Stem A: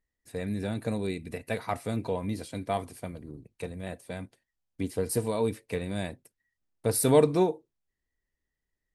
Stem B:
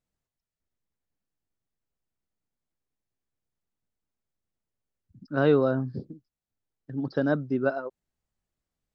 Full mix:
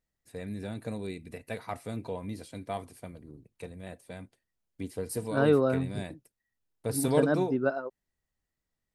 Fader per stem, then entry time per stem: -5.5 dB, -2.0 dB; 0.00 s, 0.00 s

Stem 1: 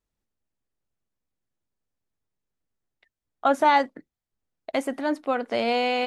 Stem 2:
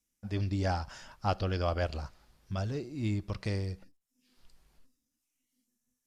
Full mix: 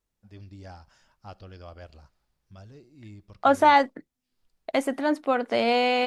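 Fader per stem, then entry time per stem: +1.5 dB, -13.5 dB; 0.00 s, 0.00 s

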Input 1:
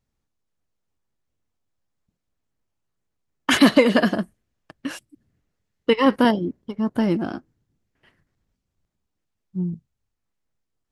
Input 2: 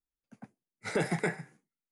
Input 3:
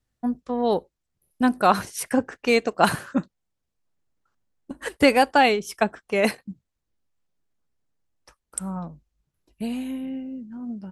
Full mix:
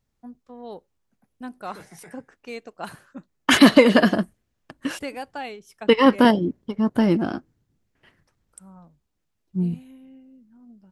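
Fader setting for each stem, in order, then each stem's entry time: +2.0 dB, -16.5 dB, -16.0 dB; 0.00 s, 0.80 s, 0.00 s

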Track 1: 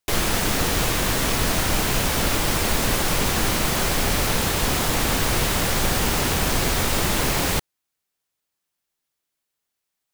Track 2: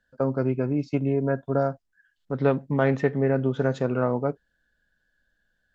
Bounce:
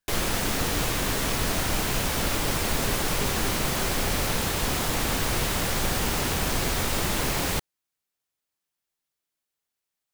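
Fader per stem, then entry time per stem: -4.5 dB, -17.5 dB; 0.00 s, 0.00 s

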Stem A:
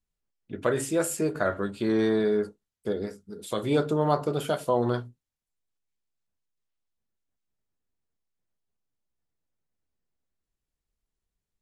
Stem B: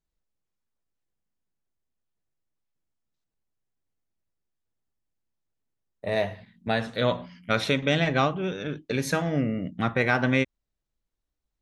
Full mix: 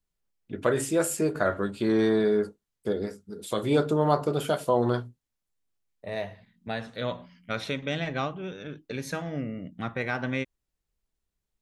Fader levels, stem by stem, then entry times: +1.0 dB, -7.0 dB; 0.00 s, 0.00 s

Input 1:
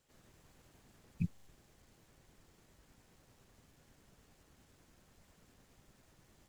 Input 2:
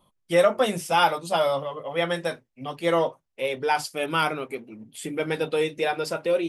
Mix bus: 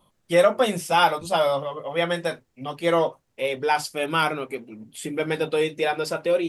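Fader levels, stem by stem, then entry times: -9.0 dB, +1.5 dB; 0.00 s, 0.00 s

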